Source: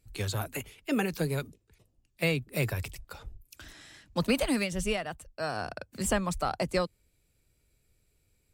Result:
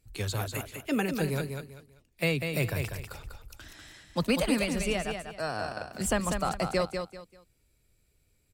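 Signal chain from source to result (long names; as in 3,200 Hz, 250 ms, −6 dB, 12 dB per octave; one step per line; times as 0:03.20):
repeating echo 195 ms, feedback 27%, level −6 dB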